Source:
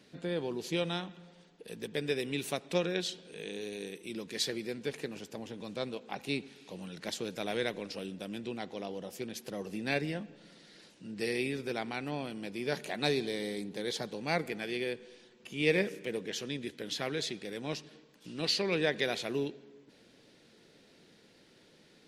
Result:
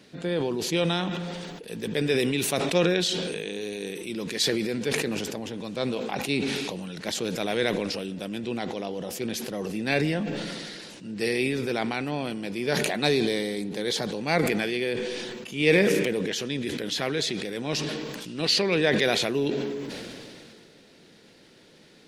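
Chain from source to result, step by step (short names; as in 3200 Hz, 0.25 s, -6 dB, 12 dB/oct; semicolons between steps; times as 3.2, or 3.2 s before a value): sustainer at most 23 dB/s; gain +6.5 dB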